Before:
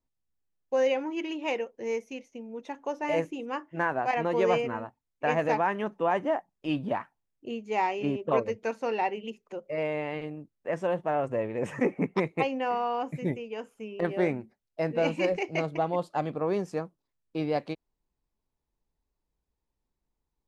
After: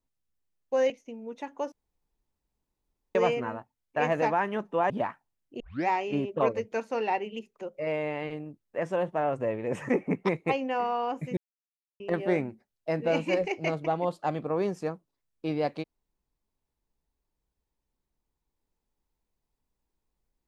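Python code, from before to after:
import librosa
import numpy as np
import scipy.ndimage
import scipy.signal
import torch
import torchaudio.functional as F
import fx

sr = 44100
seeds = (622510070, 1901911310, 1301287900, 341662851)

y = fx.edit(x, sr, fx.cut(start_s=0.9, length_s=1.27),
    fx.room_tone_fill(start_s=2.99, length_s=1.43),
    fx.cut(start_s=6.17, length_s=0.64),
    fx.tape_start(start_s=7.51, length_s=0.28),
    fx.silence(start_s=13.28, length_s=0.63), tone=tone)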